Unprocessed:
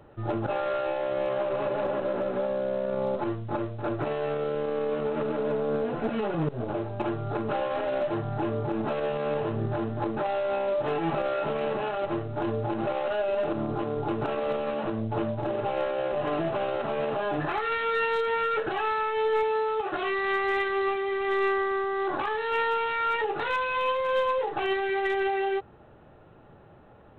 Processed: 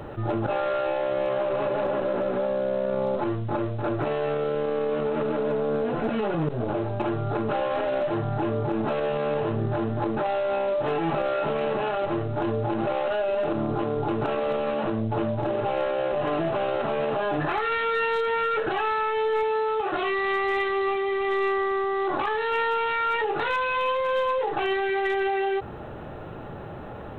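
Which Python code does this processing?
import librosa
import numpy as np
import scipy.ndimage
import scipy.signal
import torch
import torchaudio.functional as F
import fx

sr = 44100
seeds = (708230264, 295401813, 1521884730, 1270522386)

y = fx.notch(x, sr, hz=1600.0, q=10.0, at=(19.93, 22.27))
y = fx.env_flatten(y, sr, amount_pct=50)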